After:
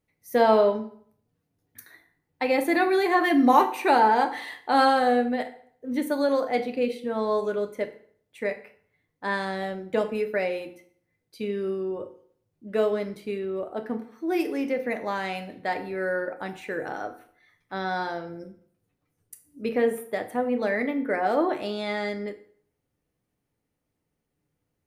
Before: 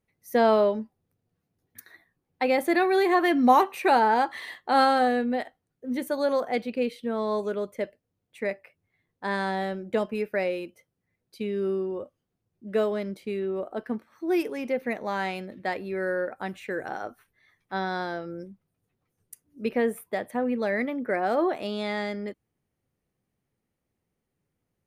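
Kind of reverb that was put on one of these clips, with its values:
feedback delay network reverb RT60 0.58 s, low-frequency decay 0.95×, high-frequency decay 0.8×, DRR 5.5 dB

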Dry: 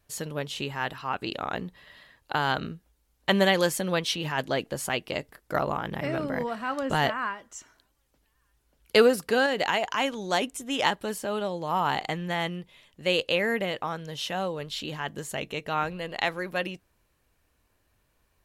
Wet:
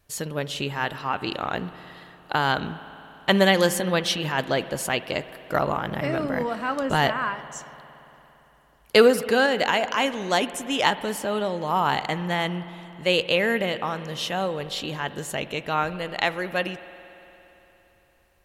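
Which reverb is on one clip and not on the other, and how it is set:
spring reverb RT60 3.5 s, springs 57 ms, chirp 75 ms, DRR 13.5 dB
level +3.5 dB

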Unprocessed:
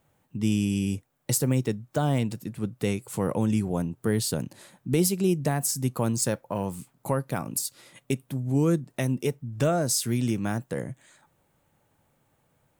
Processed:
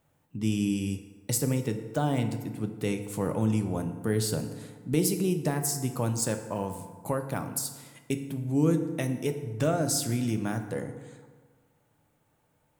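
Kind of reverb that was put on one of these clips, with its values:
feedback delay network reverb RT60 1.5 s, low-frequency decay 1×, high-frequency decay 0.55×, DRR 6.5 dB
level −3 dB

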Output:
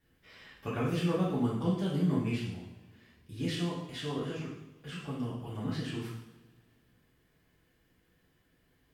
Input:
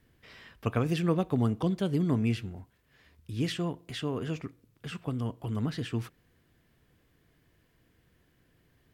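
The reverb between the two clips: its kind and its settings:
coupled-rooms reverb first 0.77 s, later 2.3 s, from −21 dB, DRR −8.5 dB
level −10.5 dB

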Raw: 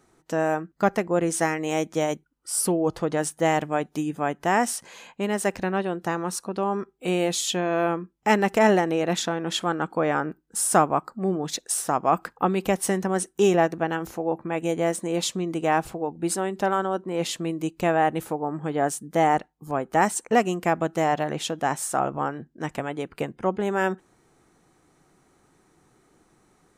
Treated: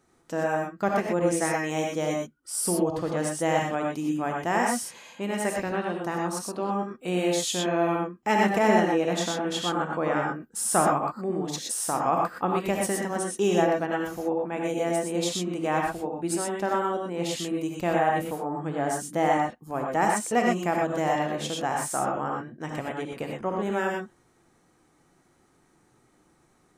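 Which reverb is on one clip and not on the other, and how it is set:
reverb whose tail is shaped and stops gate 140 ms rising, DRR −0.5 dB
level −5 dB

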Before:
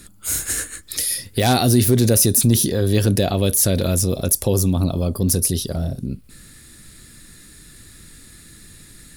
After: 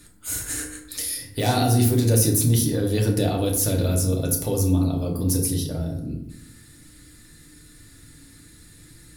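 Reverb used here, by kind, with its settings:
feedback delay network reverb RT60 0.78 s, low-frequency decay 1.35×, high-frequency decay 0.5×, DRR −1 dB
level −8 dB

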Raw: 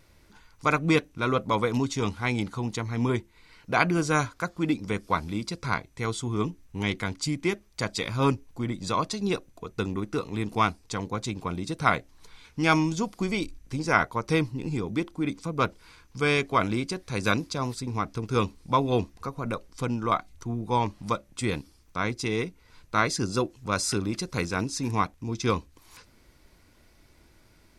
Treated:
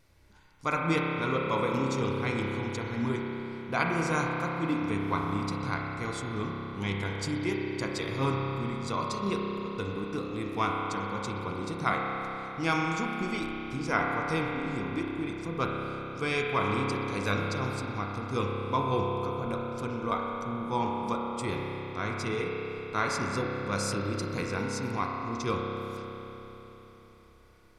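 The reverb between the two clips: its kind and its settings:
spring reverb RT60 3.9 s, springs 30 ms, chirp 35 ms, DRR −1.5 dB
level −6.5 dB

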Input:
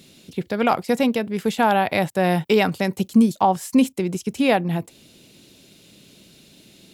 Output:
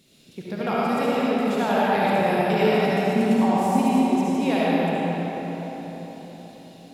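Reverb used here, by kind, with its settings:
comb and all-pass reverb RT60 4.7 s, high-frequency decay 0.6×, pre-delay 30 ms, DRR −9 dB
level −10.5 dB

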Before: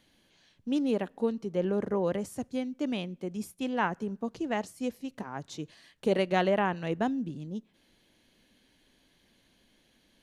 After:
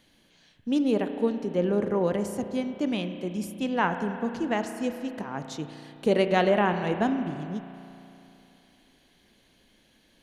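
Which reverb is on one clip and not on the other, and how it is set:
spring reverb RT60 3 s, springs 34 ms, chirp 75 ms, DRR 7.5 dB
level +3.5 dB

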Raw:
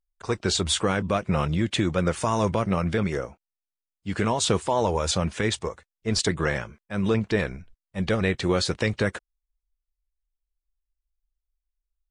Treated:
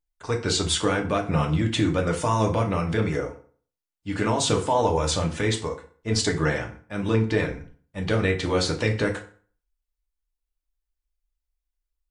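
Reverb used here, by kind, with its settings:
feedback delay network reverb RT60 0.45 s, low-frequency decay 1.05×, high-frequency decay 0.75×, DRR 1.5 dB
level −1.5 dB

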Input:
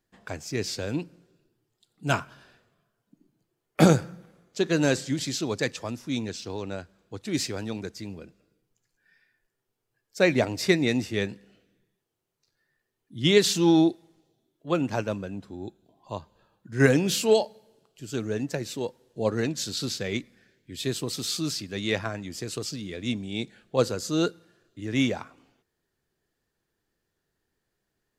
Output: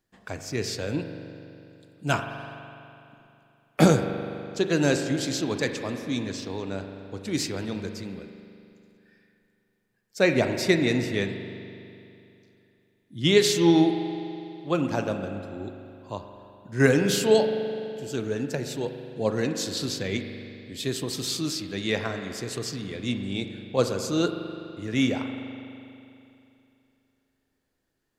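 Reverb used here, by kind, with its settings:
spring reverb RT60 2.8 s, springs 41 ms, chirp 30 ms, DRR 6.5 dB

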